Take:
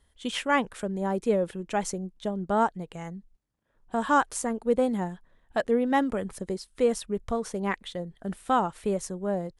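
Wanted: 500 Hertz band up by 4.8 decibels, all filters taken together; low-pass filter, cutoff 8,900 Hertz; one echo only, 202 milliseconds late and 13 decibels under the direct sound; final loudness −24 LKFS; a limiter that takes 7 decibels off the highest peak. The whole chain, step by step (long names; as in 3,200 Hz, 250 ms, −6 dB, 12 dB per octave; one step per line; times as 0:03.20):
low-pass filter 8,900 Hz
parametric band 500 Hz +5.5 dB
brickwall limiter −15.5 dBFS
single-tap delay 202 ms −13 dB
level +4 dB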